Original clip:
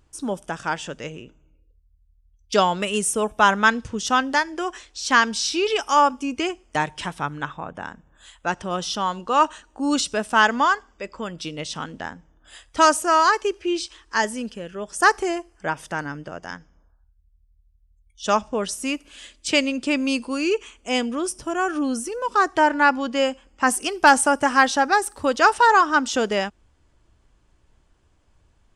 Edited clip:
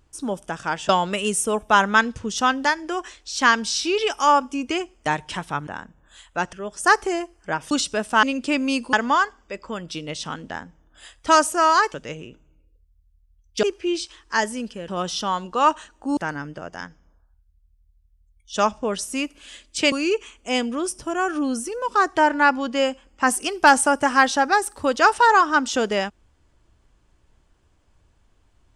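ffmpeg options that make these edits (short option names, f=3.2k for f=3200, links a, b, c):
-filter_complex "[0:a]asplit=12[a][b][c][d][e][f][g][h][i][j][k][l];[a]atrim=end=0.892[m];[b]atrim=start=2.578:end=7.362[n];[c]atrim=start=7.758:end=8.622[o];[d]atrim=start=14.688:end=15.872[p];[e]atrim=start=9.908:end=10.432[q];[f]atrim=start=19.618:end=20.322[r];[g]atrim=start=10.428:end=13.442[s];[h]atrim=start=0.888:end=2.582[t];[i]atrim=start=13.438:end=14.692[u];[j]atrim=start=8.618:end=9.912[v];[k]atrim=start=15.868:end=19.622[w];[l]atrim=start=20.318[x];[m][n]acrossfade=d=0.004:c1=hsin:c2=hsin[y];[y][o]acrossfade=d=0.004:c1=hsin:c2=hsin[z];[z][p]acrossfade=d=0.004:c1=hsin:c2=hsin[aa];[aa][q]acrossfade=d=0.004:c1=hsin:c2=hsin[ab];[ab][r]acrossfade=d=0.004:c1=hsin:c2=hsin[ac];[ac][s]acrossfade=d=0.004:c1=hsin:c2=hsin[ad];[ad][t]acrossfade=d=0.004:c1=hsin:c2=hsin[ae];[ae][u]acrossfade=d=0.004:c1=hsin:c2=hsin[af];[af][v]acrossfade=d=0.004:c1=hsin:c2=hsin[ag];[ag][w]acrossfade=d=0.004:c1=hsin:c2=hsin[ah];[ah][x]acrossfade=d=0.004:c1=hsin:c2=hsin"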